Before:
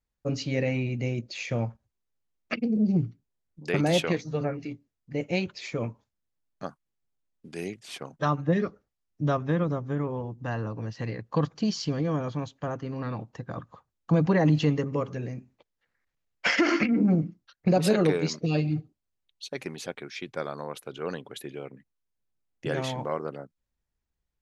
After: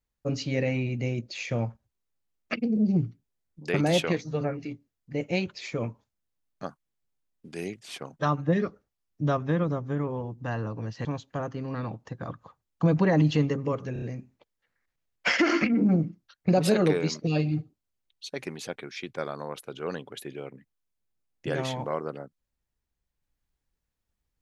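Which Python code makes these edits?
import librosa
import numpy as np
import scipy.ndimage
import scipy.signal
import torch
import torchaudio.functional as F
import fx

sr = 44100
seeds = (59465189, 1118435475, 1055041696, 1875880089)

y = fx.edit(x, sr, fx.cut(start_s=11.05, length_s=1.28),
    fx.stutter(start_s=15.21, slice_s=0.03, count=4), tone=tone)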